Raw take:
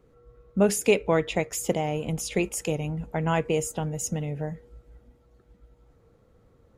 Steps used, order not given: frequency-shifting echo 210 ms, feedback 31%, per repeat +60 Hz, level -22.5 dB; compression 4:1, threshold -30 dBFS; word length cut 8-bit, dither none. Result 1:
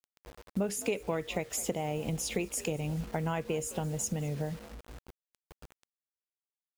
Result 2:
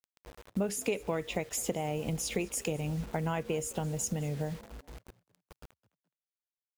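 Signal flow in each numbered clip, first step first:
frequency-shifting echo > word length cut > compression; word length cut > compression > frequency-shifting echo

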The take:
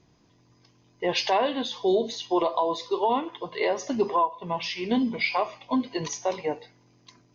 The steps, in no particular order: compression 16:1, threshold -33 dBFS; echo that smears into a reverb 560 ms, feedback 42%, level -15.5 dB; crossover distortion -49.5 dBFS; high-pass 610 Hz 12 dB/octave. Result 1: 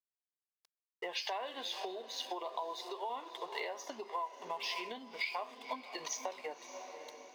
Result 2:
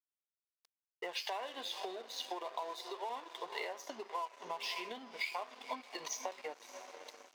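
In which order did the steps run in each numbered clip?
crossover distortion > echo that smears into a reverb > compression > high-pass; echo that smears into a reverb > compression > crossover distortion > high-pass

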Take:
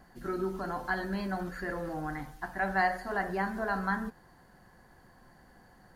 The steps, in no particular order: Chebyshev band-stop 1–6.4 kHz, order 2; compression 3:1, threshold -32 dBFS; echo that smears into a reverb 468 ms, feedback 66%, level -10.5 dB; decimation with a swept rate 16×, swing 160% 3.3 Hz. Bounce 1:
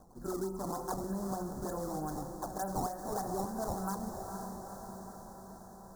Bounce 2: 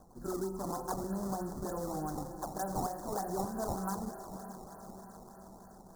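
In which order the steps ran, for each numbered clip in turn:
decimation with a swept rate > echo that smears into a reverb > compression > Chebyshev band-stop; compression > echo that smears into a reverb > decimation with a swept rate > Chebyshev band-stop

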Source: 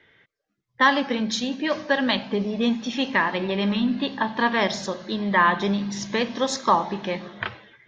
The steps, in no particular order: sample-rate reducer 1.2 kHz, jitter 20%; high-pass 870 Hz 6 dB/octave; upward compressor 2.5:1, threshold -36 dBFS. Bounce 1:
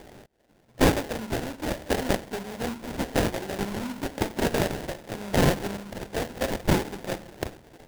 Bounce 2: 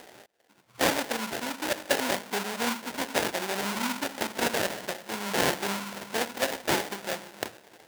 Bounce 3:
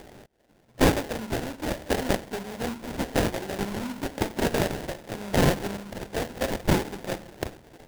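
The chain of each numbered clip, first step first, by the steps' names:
high-pass > upward compressor > sample-rate reducer; sample-rate reducer > high-pass > upward compressor; high-pass > sample-rate reducer > upward compressor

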